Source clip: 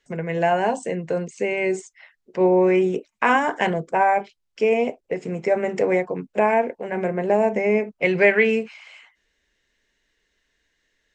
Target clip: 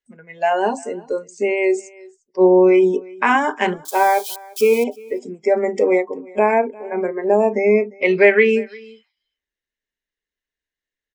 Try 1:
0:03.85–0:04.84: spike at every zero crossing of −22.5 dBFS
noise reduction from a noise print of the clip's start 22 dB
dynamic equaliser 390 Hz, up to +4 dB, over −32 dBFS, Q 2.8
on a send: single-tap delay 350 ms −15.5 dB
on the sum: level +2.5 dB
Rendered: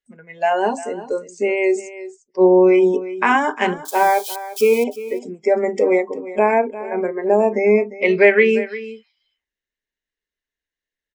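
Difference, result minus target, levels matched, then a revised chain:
echo-to-direct +8.5 dB
0:03.85–0:04.84: spike at every zero crossing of −22.5 dBFS
noise reduction from a noise print of the clip's start 22 dB
dynamic equaliser 390 Hz, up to +4 dB, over −32 dBFS, Q 2.8
on a send: single-tap delay 350 ms −24 dB
on the sum: level +2.5 dB

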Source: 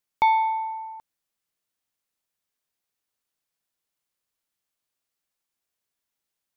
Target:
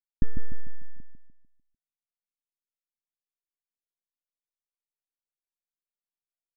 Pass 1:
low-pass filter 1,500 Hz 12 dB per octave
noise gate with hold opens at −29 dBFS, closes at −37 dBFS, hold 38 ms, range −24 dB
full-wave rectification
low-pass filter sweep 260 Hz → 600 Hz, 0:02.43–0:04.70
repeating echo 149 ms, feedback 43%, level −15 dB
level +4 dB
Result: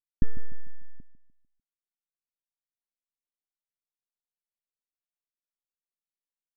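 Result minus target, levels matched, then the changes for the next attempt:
echo-to-direct −8.5 dB
change: repeating echo 149 ms, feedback 43%, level −6.5 dB

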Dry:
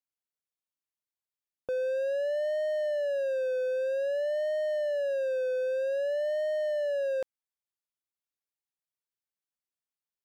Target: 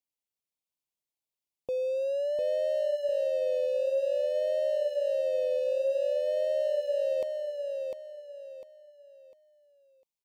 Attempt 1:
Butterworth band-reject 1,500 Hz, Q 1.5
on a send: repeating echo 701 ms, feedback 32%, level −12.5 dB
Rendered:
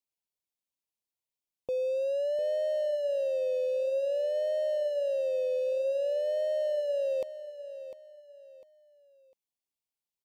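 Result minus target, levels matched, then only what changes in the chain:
echo-to-direct −8 dB
change: repeating echo 701 ms, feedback 32%, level −4.5 dB

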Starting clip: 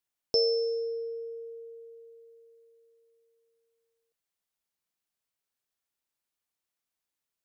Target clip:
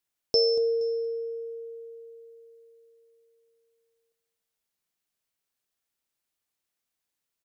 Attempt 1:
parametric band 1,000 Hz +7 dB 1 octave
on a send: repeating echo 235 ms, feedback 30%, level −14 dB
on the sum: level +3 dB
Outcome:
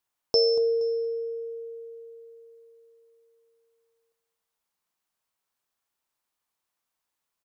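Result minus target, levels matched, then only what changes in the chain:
1,000 Hz band +4.5 dB
change: parametric band 1,000 Hz −2 dB 1 octave

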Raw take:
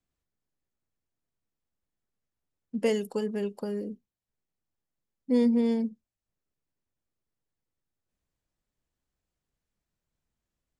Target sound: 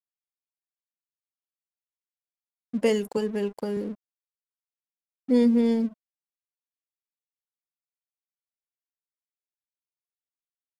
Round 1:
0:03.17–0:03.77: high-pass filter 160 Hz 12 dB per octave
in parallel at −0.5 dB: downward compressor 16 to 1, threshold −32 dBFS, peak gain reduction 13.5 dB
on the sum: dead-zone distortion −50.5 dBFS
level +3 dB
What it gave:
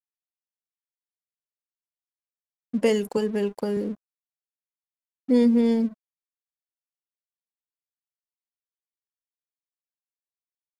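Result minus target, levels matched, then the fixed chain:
downward compressor: peak gain reduction −10.5 dB
0:03.17–0:03.77: high-pass filter 160 Hz 12 dB per octave
in parallel at −0.5 dB: downward compressor 16 to 1, threshold −43 dBFS, peak gain reduction 24 dB
on the sum: dead-zone distortion −50.5 dBFS
level +3 dB

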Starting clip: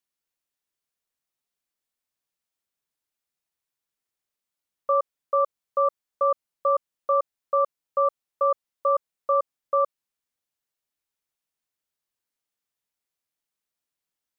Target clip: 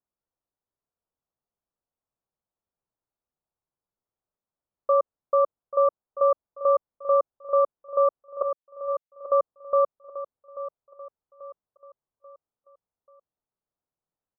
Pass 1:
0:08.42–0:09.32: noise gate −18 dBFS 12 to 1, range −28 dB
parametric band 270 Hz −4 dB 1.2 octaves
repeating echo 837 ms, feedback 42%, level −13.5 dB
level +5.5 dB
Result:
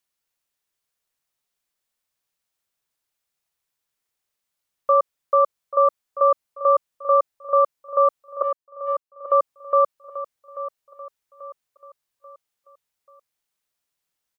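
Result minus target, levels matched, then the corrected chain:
1,000 Hz band +3.0 dB
0:08.42–0:09.32: noise gate −18 dBFS 12 to 1, range −28 dB
Bessel low-pass filter 790 Hz, order 8
parametric band 270 Hz −4 dB 1.2 octaves
repeating echo 837 ms, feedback 42%, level −13.5 dB
level +5.5 dB

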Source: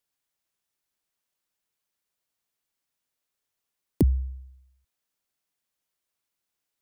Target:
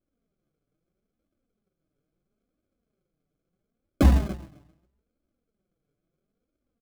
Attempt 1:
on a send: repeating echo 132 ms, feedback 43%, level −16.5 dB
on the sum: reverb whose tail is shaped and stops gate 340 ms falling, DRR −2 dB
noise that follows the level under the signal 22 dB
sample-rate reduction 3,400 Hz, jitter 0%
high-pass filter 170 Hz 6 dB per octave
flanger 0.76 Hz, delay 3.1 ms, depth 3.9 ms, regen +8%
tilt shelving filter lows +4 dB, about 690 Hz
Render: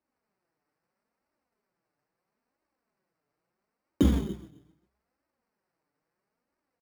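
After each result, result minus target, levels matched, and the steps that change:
sample-rate reduction: distortion −9 dB; 125 Hz band −2.0 dB
change: sample-rate reduction 930 Hz, jitter 0%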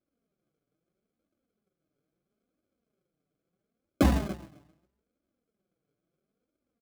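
125 Hz band −2.0 dB
remove: high-pass filter 170 Hz 6 dB per octave

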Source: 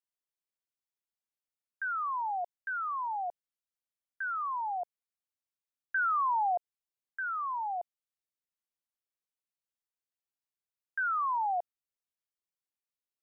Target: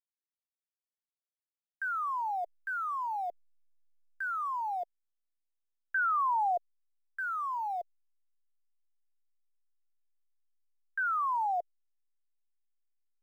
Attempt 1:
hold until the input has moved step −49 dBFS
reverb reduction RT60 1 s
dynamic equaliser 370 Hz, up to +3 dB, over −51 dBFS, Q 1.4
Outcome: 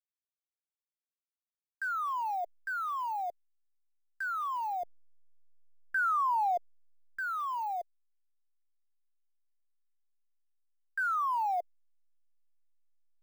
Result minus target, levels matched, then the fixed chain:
hold until the input has moved: distortion +10 dB
hold until the input has moved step −57 dBFS
reverb reduction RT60 1 s
dynamic equaliser 370 Hz, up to +3 dB, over −51 dBFS, Q 1.4

